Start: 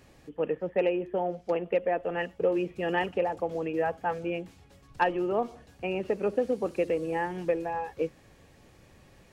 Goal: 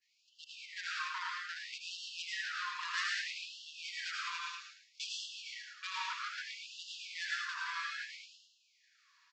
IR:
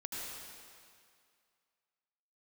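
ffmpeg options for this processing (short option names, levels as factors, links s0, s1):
-filter_complex "[0:a]acrossover=split=120[s0][s1];[s1]acontrast=88[s2];[s0][s2]amix=inputs=2:normalize=0,agate=range=0.0224:threshold=0.01:ratio=3:detection=peak,aresample=16000,volume=21.1,asoftclip=hard,volume=0.0473,aresample=44100,tiltshelf=f=970:g=9,acompressor=threshold=0.0631:ratio=6,equalizer=f=4800:t=o:w=0.77:g=9.5,aecho=1:1:109|218|327|436:0.422|0.139|0.0459|0.0152[s3];[1:a]atrim=start_sample=2205,afade=t=out:st=0.26:d=0.01,atrim=end_sample=11907[s4];[s3][s4]afir=irnorm=-1:irlink=0,afftfilt=real='re*gte(b*sr/1024,920*pow(2700/920,0.5+0.5*sin(2*PI*0.62*pts/sr)))':imag='im*gte(b*sr/1024,920*pow(2700/920,0.5+0.5*sin(2*PI*0.62*pts/sr)))':win_size=1024:overlap=0.75,volume=2"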